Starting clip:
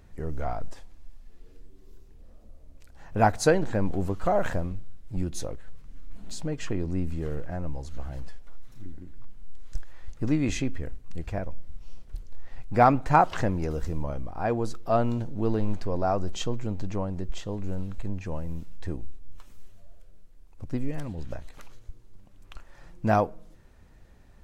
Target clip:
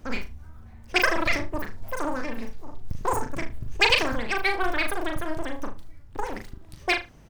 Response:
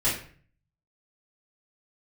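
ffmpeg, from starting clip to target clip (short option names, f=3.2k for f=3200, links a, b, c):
-filter_complex "[0:a]asplit=2[a][b];[b]adelay=129,lowpass=f=2.2k:p=1,volume=-5dB,asplit=2[c][d];[d]adelay=129,lowpass=f=2.2k:p=1,volume=0.35,asplit=2[e][f];[f]adelay=129,lowpass=f=2.2k:p=1,volume=0.35,asplit=2[g][h];[h]adelay=129,lowpass=f=2.2k:p=1,volume=0.35[i];[a][c][e][g][i]amix=inputs=5:normalize=0,asetrate=147735,aresample=44100"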